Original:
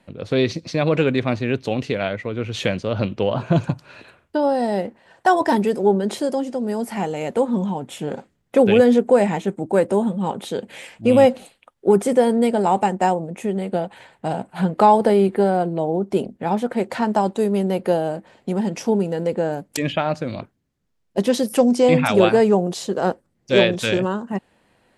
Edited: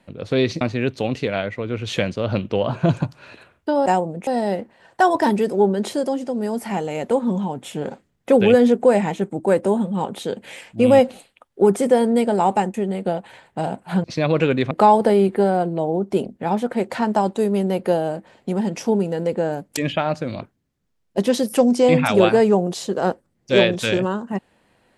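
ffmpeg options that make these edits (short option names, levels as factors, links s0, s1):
-filter_complex "[0:a]asplit=7[s0][s1][s2][s3][s4][s5][s6];[s0]atrim=end=0.612[s7];[s1]atrim=start=1.278:end=4.532[s8];[s2]atrim=start=12.998:end=13.412[s9];[s3]atrim=start=4.528:end=13.002[s10];[s4]atrim=start=13.408:end=14.712[s11];[s5]atrim=start=0.608:end=1.282[s12];[s6]atrim=start=14.708[s13];[s7][s8]acrossfade=d=0.004:c1=hsin:c2=hsin[s14];[s14][s9]acrossfade=d=0.004:c1=hsin:c2=hsin[s15];[s15][s10]acrossfade=d=0.004:c1=hsin:c2=hsin[s16];[s16][s11]acrossfade=d=0.004:c1=hsin:c2=hsin[s17];[s17][s12]acrossfade=d=0.004:c1=hsin:c2=hsin[s18];[s18][s13]acrossfade=d=0.004:c1=hsin:c2=hsin"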